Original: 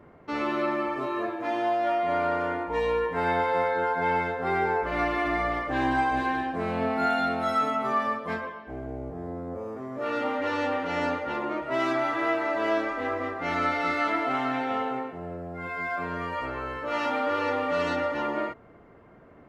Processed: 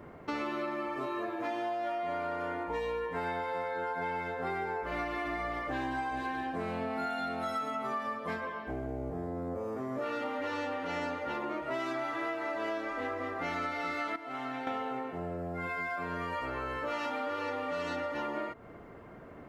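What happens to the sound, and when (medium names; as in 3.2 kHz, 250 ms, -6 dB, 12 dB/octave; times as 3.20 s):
14.16–14.67 s: gain -11.5 dB
whole clip: treble shelf 5.8 kHz +6.5 dB; compression, threshold -36 dBFS; trim +3 dB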